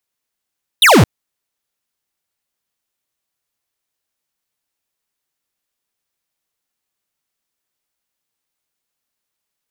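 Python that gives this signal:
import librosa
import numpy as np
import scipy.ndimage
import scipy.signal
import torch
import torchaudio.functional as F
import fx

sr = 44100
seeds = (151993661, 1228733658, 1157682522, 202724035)

y = fx.laser_zap(sr, level_db=-7.5, start_hz=4000.0, end_hz=83.0, length_s=0.22, wave='square')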